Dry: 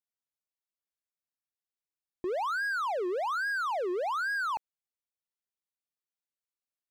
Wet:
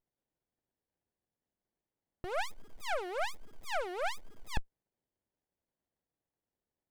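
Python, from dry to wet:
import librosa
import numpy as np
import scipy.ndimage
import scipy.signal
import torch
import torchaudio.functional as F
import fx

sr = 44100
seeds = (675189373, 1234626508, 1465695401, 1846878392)

y = fx.curve_eq(x, sr, hz=(130.0, 190.0, 430.0, 760.0, 1500.0, 5900.0, 8900.0, 14000.0), db=(0, -16, -12, 5, 10, -25, 13, -3))
y = fx.running_max(y, sr, window=33)
y = y * librosa.db_to_amplitude(3.5)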